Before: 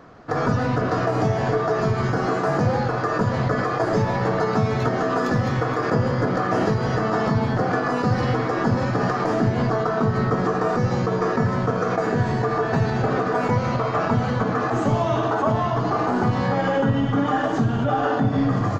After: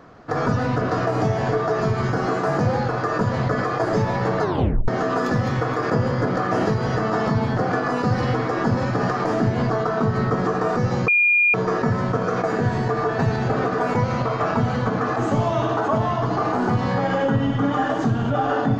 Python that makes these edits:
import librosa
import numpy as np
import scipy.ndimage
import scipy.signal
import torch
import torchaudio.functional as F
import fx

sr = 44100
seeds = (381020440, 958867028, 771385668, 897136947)

y = fx.edit(x, sr, fx.tape_stop(start_s=4.42, length_s=0.46),
    fx.insert_tone(at_s=11.08, length_s=0.46, hz=2420.0, db=-13.5), tone=tone)